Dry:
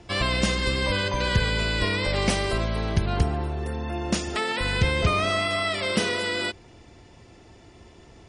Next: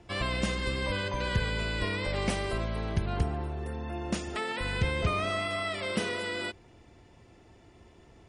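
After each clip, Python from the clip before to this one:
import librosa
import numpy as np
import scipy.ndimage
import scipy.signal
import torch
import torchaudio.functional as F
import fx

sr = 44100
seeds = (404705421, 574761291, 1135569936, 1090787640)

y = fx.peak_eq(x, sr, hz=5200.0, db=-5.0, octaves=1.2)
y = y * 10.0 ** (-6.0 / 20.0)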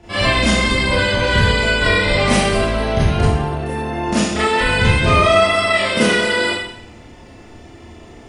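y = fx.rev_schroeder(x, sr, rt60_s=0.69, comb_ms=26, drr_db=-10.0)
y = y * 10.0 ** (6.5 / 20.0)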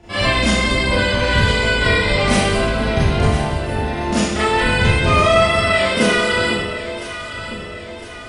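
y = fx.echo_alternate(x, sr, ms=504, hz=810.0, feedback_pct=69, wet_db=-8.5)
y = y * 10.0 ** (-1.0 / 20.0)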